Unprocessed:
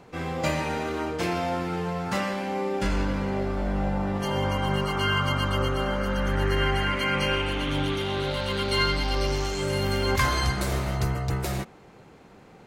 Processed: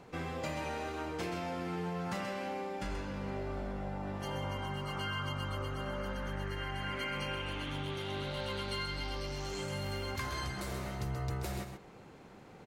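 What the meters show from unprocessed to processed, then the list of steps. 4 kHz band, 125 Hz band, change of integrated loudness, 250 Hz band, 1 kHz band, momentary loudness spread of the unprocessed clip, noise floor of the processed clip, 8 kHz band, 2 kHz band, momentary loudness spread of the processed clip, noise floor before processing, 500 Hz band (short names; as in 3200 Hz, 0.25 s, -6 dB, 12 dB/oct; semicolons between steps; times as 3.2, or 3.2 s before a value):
-11.5 dB, -11.0 dB, -11.5 dB, -11.5 dB, -11.0 dB, 5 LU, -54 dBFS, -11.0 dB, -11.5 dB, 3 LU, -51 dBFS, -12.0 dB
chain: compressor, threshold -31 dBFS, peak gain reduction 12 dB; echo 0.131 s -7.5 dB; gain -4 dB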